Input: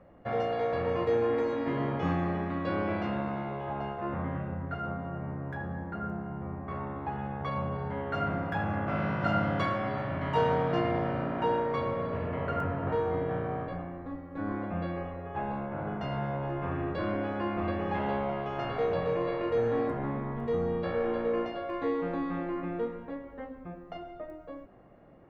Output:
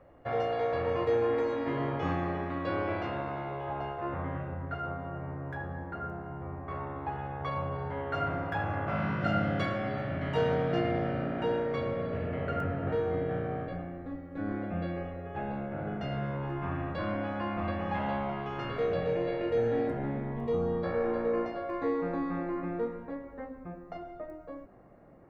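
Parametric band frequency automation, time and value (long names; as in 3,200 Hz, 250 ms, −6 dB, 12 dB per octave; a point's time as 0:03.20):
parametric band −14.5 dB 0.3 octaves
0:08.83 200 Hz
0:09.25 1,000 Hz
0:16.13 1,000 Hz
0:16.85 390 Hz
0:18.07 390 Hz
0:19.12 1,100 Hz
0:20.28 1,100 Hz
0:20.90 3,100 Hz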